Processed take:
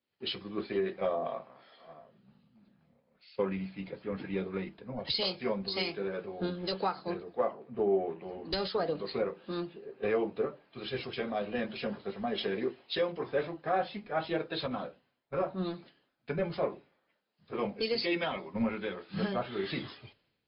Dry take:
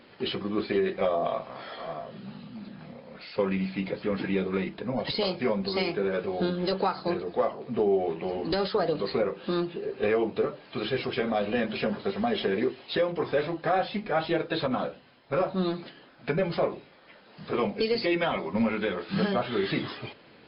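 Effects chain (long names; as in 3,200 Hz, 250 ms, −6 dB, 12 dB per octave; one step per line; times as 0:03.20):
multiband upward and downward expander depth 100%
level −6.5 dB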